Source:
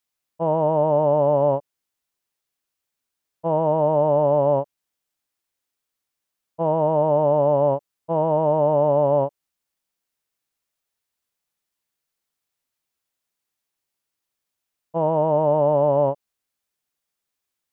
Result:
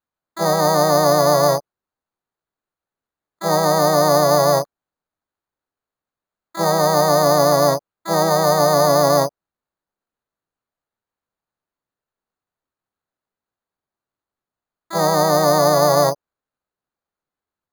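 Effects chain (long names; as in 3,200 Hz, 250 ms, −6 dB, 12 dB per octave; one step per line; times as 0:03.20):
Butterworth low-pass 1,600 Hz 36 dB per octave
pitch-shifted copies added +3 semitones −6 dB, +12 semitones −7 dB
bad sample-rate conversion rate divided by 8×, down none, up hold
level +2 dB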